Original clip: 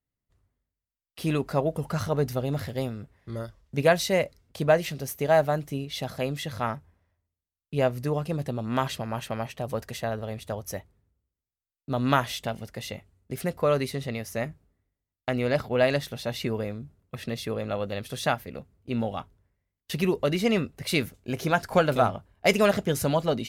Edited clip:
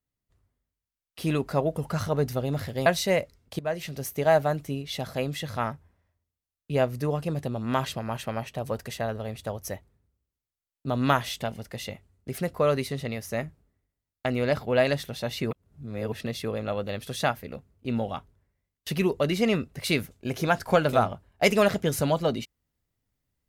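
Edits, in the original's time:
2.86–3.89 cut
4.62–5.05 fade in, from -16.5 dB
16.54–17.15 reverse

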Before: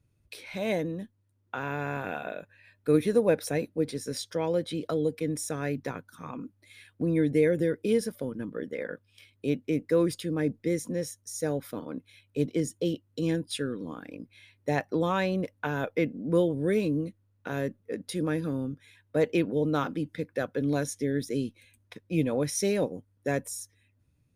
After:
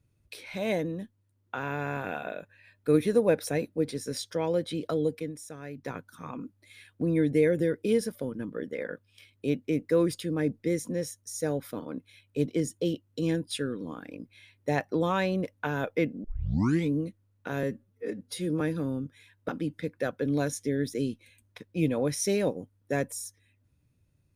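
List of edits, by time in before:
5.13–5.95 dip -10 dB, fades 0.20 s
16.24 tape start 0.68 s
17.63–18.28 stretch 1.5×
19.16–19.84 cut

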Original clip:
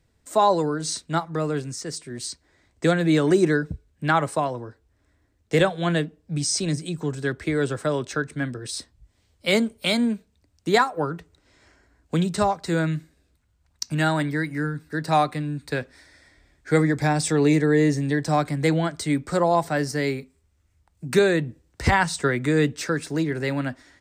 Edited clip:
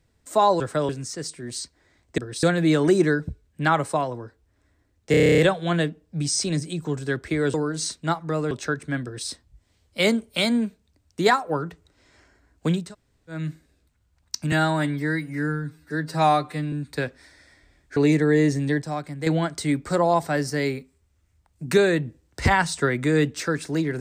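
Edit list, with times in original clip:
0.6–1.57 swap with 7.7–7.99
5.54 stutter 0.03 s, 10 plays
8.51–8.76 copy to 2.86
12.31–12.87 room tone, crossfade 0.24 s
14–15.47 stretch 1.5×
16.71–17.38 cut
18.24–18.68 gain -8 dB

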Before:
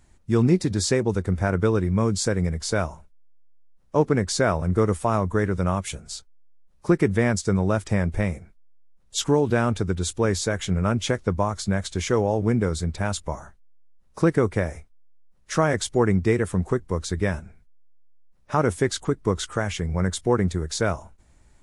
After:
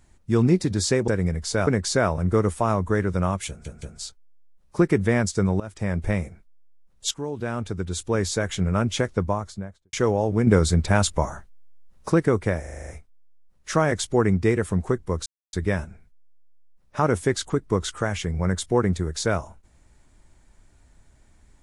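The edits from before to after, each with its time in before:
1.08–2.26 cut
2.85–4.11 cut
5.92 stutter 0.17 s, 3 plays
7.7–8.14 fade in, from -19 dB
9.21–10.49 fade in, from -14.5 dB
11.23–12.03 studio fade out
12.57–14.2 gain +6.5 dB
14.7 stutter 0.04 s, 8 plays
17.08 insert silence 0.27 s

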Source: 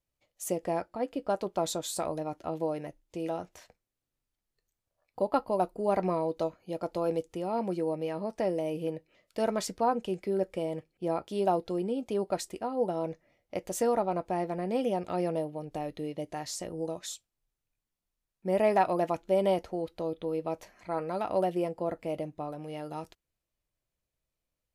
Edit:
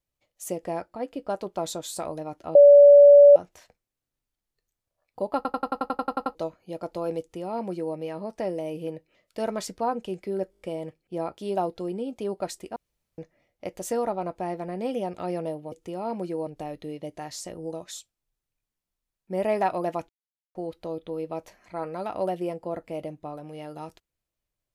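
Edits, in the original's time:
2.55–3.36 bleep 574 Hz -8 dBFS
5.36 stutter in place 0.09 s, 11 plays
7.2–7.95 copy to 15.62
10.51 stutter 0.02 s, 6 plays
12.66–13.08 room tone
19.24–19.7 mute

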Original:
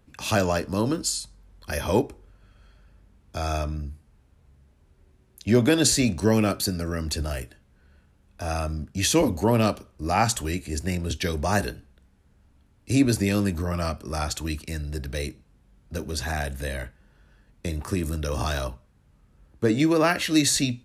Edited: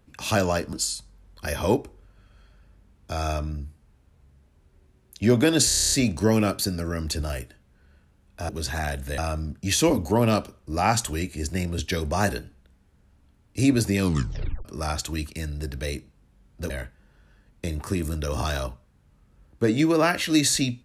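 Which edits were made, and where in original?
0.73–0.98 cut
5.93 stutter 0.03 s, 9 plays
13.31 tape stop 0.66 s
16.02–16.71 move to 8.5

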